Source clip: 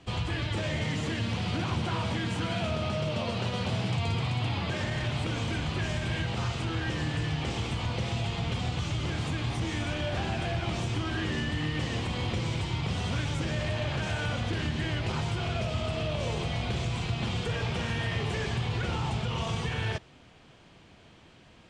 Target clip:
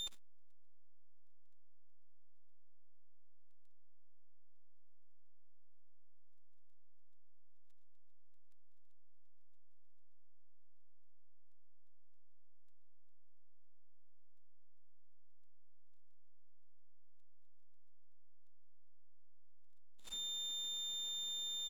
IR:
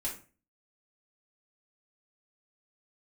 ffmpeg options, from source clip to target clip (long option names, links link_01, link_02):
-filter_complex "[0:a]aeval=exprs='abs(val(0))':channel_layout=same,aecho=1:1:139:0.562,asplit=2[link_01][link_02];[1:a]atrim=start_sample=2205[link_03];[link_02][link_03]afir=irnorm=-1:irlink=0,volume=-9.5dB[link_04];[link_01][link_04]amix=inputs=2:normalize=0,aeval=exprs='val(0)+0.0316*sin(2*PI*3600*n/s)':channel_layout=same,aeval=exprs='(tanh(70.8*val(0)+0.65)-tanh(0.65))/70.8':channel_layout=same,volume=-2.5dB"